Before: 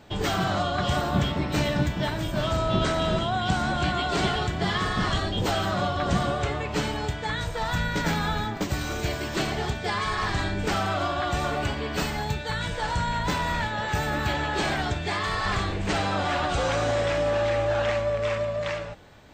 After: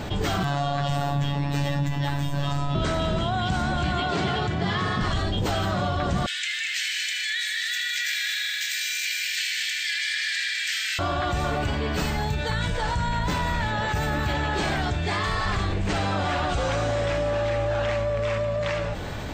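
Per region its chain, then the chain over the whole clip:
0.43–2.75 robotiser 142 Hz + doubler 13 ms -5 dB
4–5.01 HPF 87 Hz 24 dB/oct + air absorption 61 m
6.26–10.99 steep high-pass 1700 Hz 72 dB/oct + multi-head echo 78 ms, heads all three, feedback 46%, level -11 dB + lo-fi delay 0.204 s, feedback 35%, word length 10-bit, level -7 dB
whole clip: low shelf 150 Hz +6 dB; fast leveller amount 70%; gain -6 dB

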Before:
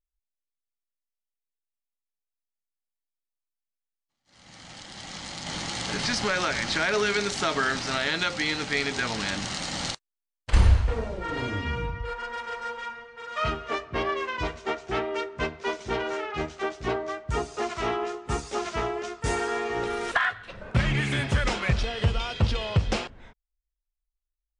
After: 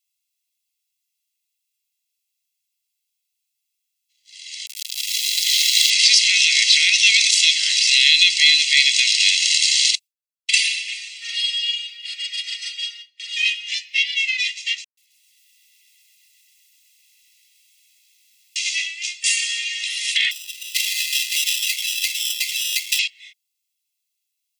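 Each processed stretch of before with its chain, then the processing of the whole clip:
4.66–5.9 dynamic EQ 3900 Hz, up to +4 dB, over -51 dBFS, Q 4.5 + sample gate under -36 dBFS
9.93–13.36 gate with hold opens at -33 dBFS, closes at -36 dBFS + comb 4.5 ms, depth 75%
14.84–18.56 negative-ratio compressor -40 dBFS + rippled Chebyshev low-pass 540 Hz, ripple 6 dB + lo-fi delay 0.129 s, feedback 80%, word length 10-bit, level -15 dB
20.31–22.99 sample-rate reducer 2200 Hz + Doppler distortion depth 0.11 ms
whole clip: steep high-pass 2200 Hz 72 dB/oct; comb 1.5 ms, depth 90%; maximiser +17 dB; gain -1 dB

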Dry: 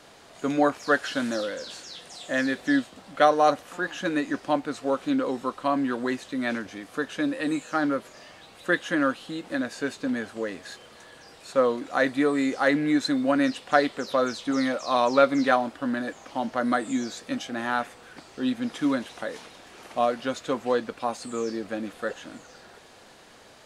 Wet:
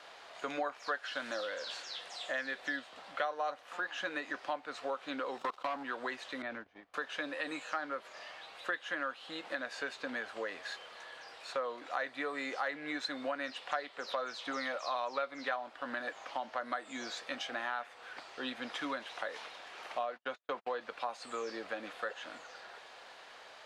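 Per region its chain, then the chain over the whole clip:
5.38–5.83 bell 1900 Hz -12.5 dB 0.41 oct + sample leveller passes 3 + level quantiser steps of 23 dB
6.42–6.94 RIAA curve playback + compressor 4:1, threshold -29 dBFS + gate -33 dBFS, range -23 dB
20.03–20.81 LPF 3800 Hz 6 dB/oct + gate -35 dBFS, range -47 dB
whole clip: three-band isolator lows -20 dB, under 530 Hz, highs -14 dB, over 4800 Hz; compressor 4:1, threshold -36 dBFS; gain +1 dB

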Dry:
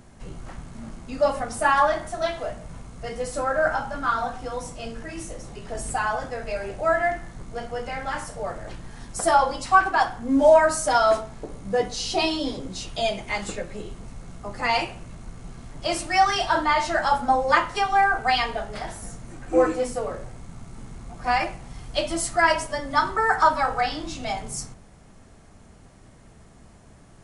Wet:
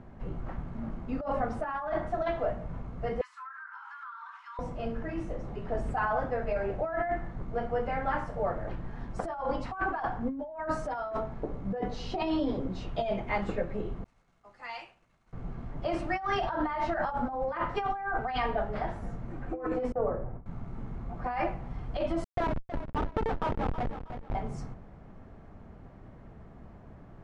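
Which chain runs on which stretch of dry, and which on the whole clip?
3.21–4.59 steep high-pass 950 Hz 96 dB/oct + compressor 16:1, threshold -38 dBFS
14.04–15.33 expander -36 dBFS + pre-emphasis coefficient 0.97
19.92–20.46 LPF 1300 Hz + gate with hold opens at -26 dBFS, closes at -37 dBFS
22.24–24.35 LPF 1400 Hz + Schmitt trigger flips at -21 dBFS + lo-fi delay 0.319 s, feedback 35%, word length 8-bit, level -14 dB
whole clip: Bessel low-pass 1300 Hz, order 2; negative-ratio compressor -28 dBFS, ratio -1; gain -2.5 dB

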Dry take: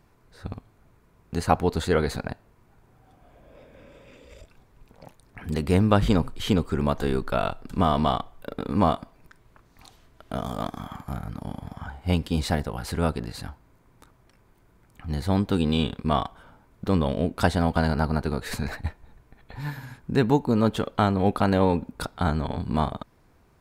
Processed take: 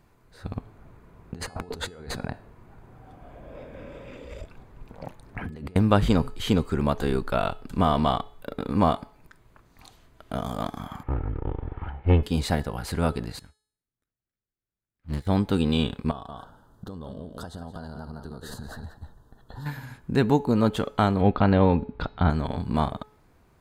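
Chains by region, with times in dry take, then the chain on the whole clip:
0.56–5.76 high shelf 3100 Hz -10 dB + negative-ratio compressor -37 dBFS
11.03–12.23 minimum comb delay 2.3 ms + LPF 2600 Hz 24 dB/oct + low shelf 270 Hz +6 dB
13.39–15.27 minimum comb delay 0.55 ms + upward expander 2.5:1, over -48 dBFS
16.11–19.66 echo 0.176 s -11.5 dB + compressor 10:1, threshold -33 dBFS + Butterworth band-stop 2300 Hz, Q 1.5
21.21–22.3 LPF 3800 Hz 24 dB/oct + low shelf 140 Hz +7 dB
whole clip: notch 5500 Hz, Q 16; de-hum 427.5 Hz, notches 27

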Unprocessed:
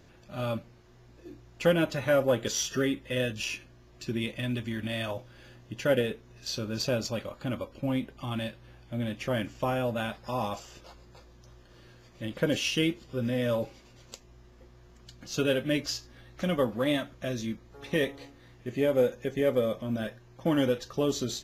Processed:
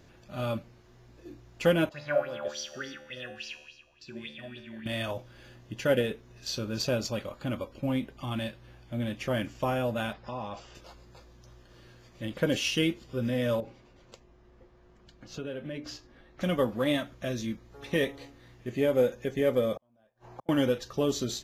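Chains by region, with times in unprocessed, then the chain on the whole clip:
1.89–4.86 bell 11000 Hz -8.5 dB 1.9 oct + resonator 74 Hz, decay 1.1 s, mix 90% + LFO bell 3.5 Hz 610–5200 Hz +17 dB
10.13–10.75 LPF 4000 Hz + compressor 2.5:1, threshold -35 dBFS
13.6–16.41 LPF 1700 Hz 6 dB/oct + notches 60/120/180/240/300 Hz + compressor 3:1, threshold -36 dBFS
19.76–20.49 bell 810 Hz +14 dB 1.2 oct + flipped gate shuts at -30 dBFS, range -41 dB + three-band squash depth 40%
whole clip: dry

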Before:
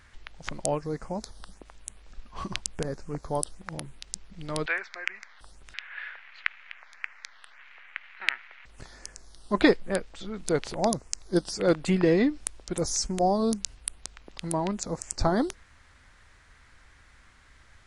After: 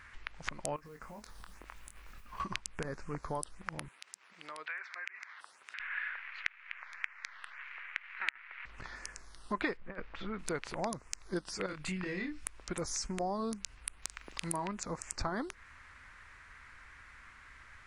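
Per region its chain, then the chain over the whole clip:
0.76–2.4 compressor 20:1, threshold -43 dBFS + modulation noise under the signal 20 dB + doubler 24 ms -6 dB
3.88–5.8 HPF 520 Hz + compressor 3:1, threshold -46 dBFS
8.29–8.96 LPF 5000 Hz + negative-ratio compressor -44 dBFS
9.77–10.39 Gaussian blur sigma 2.1 samples + negative-ratio compressor -32 dBFS, ratio -0.5
11.66–12.45 bell 600 Hz -11.5 dB 2.7 oct + compressor 2.5:1, threshold -31 dBFS + doubler 27 ms -4 dB
14.02–14.67 high shelf 4500 Hz +10.5 dB + doubler 42 ms -12.5 dB
whole clip: band shelf 1600 Hz +8.5 dB; compressor 3:1, threshold -32 dBFS; gain -3.5 dB

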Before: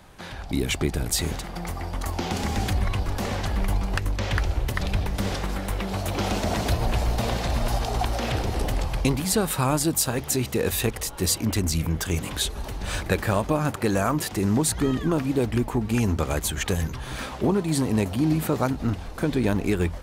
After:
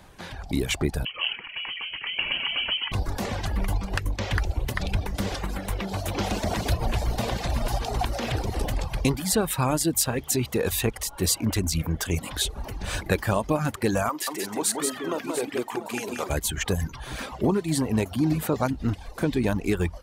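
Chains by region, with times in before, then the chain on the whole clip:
1.05–2.92 HPF 84 Hz 24 dB/oct + bell 440 Hz +4 dB 1.4 oct + inverted band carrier 3100 Hz
14.09–16.3 HPF 440 Hz + tapped delay 48/180/694 ms -12/-3.5/-11 dB
whole clip: notch 1300 Hz, Q 26; reverb removal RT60 0.72 s

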